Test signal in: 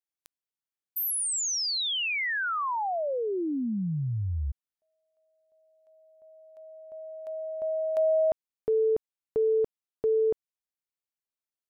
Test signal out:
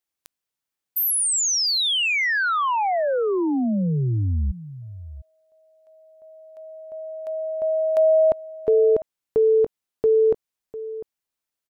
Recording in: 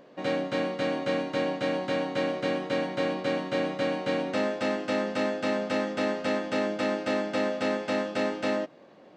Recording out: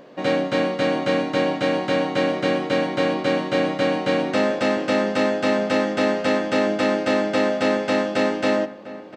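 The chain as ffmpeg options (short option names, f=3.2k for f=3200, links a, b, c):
-filter_complex "[0:a]asplit=2[a][b];[b]adelay=699.7,volume=-15dB,highshelf=f=4k:g=-15.7[c];[a][c]amix=inputs=2:normalize=0,volume=7.5dB"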